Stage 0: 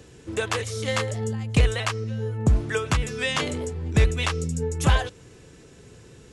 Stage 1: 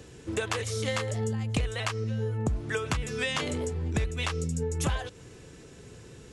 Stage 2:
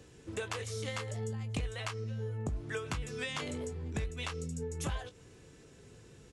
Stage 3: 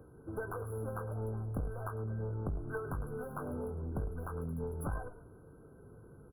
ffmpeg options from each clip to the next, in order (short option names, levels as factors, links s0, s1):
-af "acompressor=threshold=0.0501:ratio=6"
-filter_complex "[0:a]asplit=2[s0][s1];[s1]adelay=20,volume=0.299[s2];[s0][s2]amix=inputs=2:normalize=0,volume=0.398"
-filter_complex "[0:a]asplit=4[s0][s1][s2][s3];[s1]adelay=104,afreqshift=-40,volume=0.211[s4];[s2]adelay=208,afreqshift=-80,volume=0.0716[s5];[s3]adelay=312,afreqshift=-120,volume=0.0245[s6];[s0][s4][s5][s6]amix=inputs=4:normalize=0,aeval=exprs='clip(val(0),-1,0.0126)':c=same,afftfilt=real='re*(1-between(b*sr/4096,1600,10000))':imag='im*(1-between(b*sr/4096,1600,10000))':win_size=4096:overlap=0.75,volume=1.12"